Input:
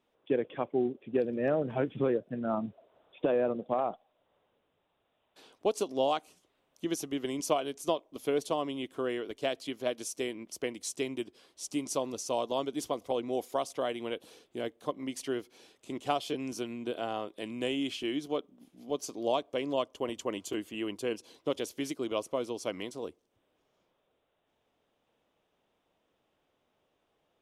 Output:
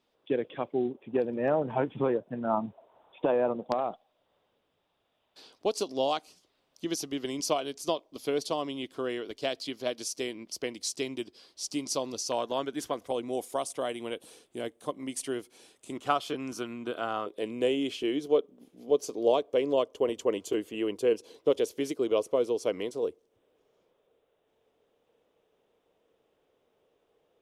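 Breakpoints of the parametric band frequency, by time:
parametric band +11 dB 0.6 octaves
4,600 Hz
from 0:00.91 910 Hz
from 0:03.72 4,700 Hz
from 0:12.32 1,600 Hz
from 0:13.07 9,100 Hz
from 0:15.97 1,300 Hz
from 0:17.26 450 Hz

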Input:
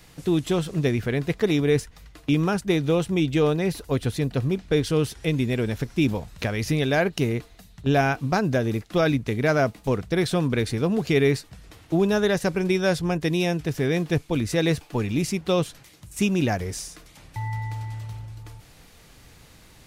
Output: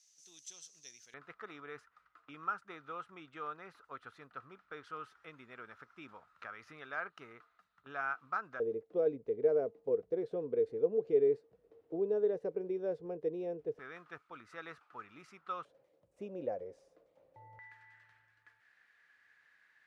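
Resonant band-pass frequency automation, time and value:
resonant band-pass, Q 9.9
6,100 Hz
from 0:01.14 1,300 Hz
from 0:08.60 460 Hz
from 0:13.79 1,300 Hz
from 0:15.65 530 Hz
from 0:17.59 1,700 Hz

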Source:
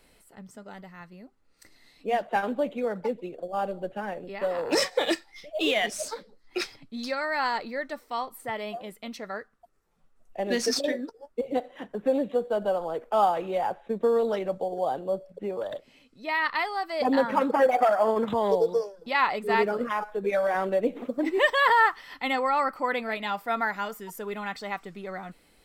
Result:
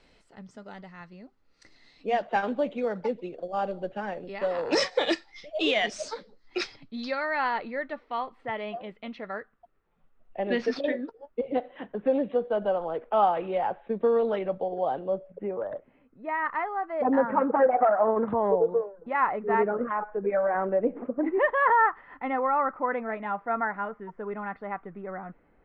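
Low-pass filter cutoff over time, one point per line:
low-pass filter 24 dB per octave
0:06.64 6,100 Hz
0:07.47 3,200 Hz
0:15.05 3,200 Hz
0:15.74 1,700 Hz

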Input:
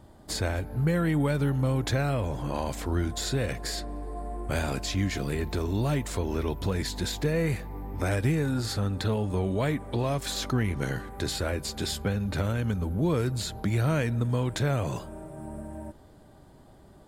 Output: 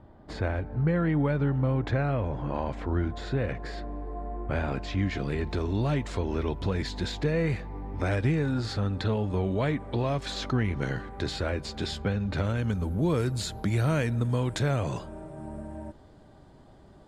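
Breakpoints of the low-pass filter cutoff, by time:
0:04.64 2,200 Hz
0:05.49 4,500 Hz
0:12.32 4,500 Hz
0:12.86 11,000 Hz
0:14.47 11,000 Hz
0:15.04 6,200 Hz

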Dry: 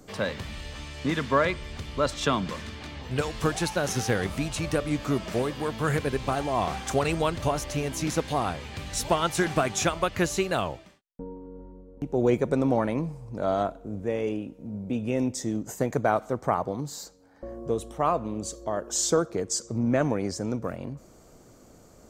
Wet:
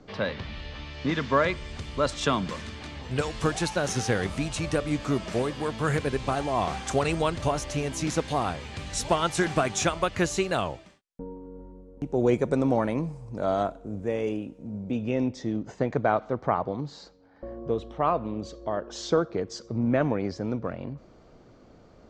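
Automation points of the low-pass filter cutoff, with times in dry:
low-pass filter 24 dB per octave
0:00.84 4,700 Hz
0:01.85 9,900 Hz
0:14.57 9,900 Hz
0:15.36 4,400 Hz

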